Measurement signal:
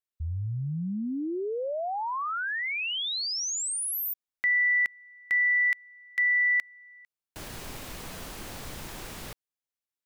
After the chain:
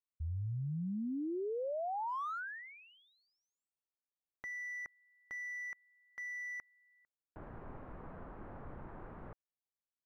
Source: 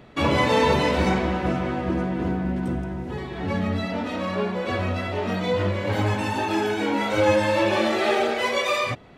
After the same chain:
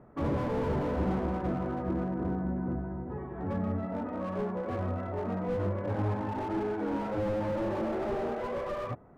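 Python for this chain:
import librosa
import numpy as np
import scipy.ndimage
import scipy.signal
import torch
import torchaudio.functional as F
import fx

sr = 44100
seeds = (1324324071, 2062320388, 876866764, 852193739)

y = scipy.signal.sosfilt(scipy.signal.butter(4, 1400.0, 'lowpass', fs=sr, output='sos'), x)
y = fx.slew_limit(y, sr, full_power_hz=36.0)
y = y * librosa.db_to_amplitude(-6.5)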